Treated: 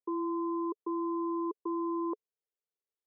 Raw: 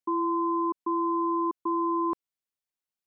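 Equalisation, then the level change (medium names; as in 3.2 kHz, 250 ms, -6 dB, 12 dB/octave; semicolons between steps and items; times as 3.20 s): ladder band-pass 470 Hz, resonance 70%; +6.5 dB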